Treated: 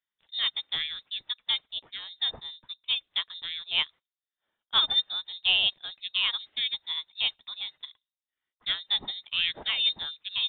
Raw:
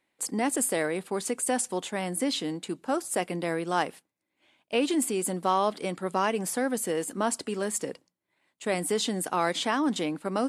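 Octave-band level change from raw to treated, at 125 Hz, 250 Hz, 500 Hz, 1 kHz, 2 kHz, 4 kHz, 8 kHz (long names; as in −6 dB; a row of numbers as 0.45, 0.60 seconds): below −15 dB, below −25 dB, −25.0 dB, −14.0 dB, +1.0 dB, +13.0 dB, below −40 dB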